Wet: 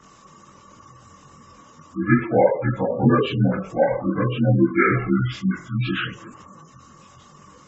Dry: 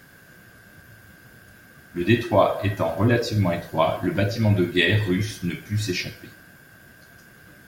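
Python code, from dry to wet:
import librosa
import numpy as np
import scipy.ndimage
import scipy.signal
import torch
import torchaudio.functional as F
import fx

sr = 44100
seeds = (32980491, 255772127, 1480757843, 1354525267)

y = fx.partial_stretch(x, sr, pct=82)
y = fx.chorus_voices(y, sr, voices=6, hz=1.3, base_ms=23, depth_ms=3.0, mix_pct=55)
y = fx.spec_gate(y, sr, threshold_db=-25, keep='strong')
y = F.gain(torch.from_numpy(y), 6.5).numpy()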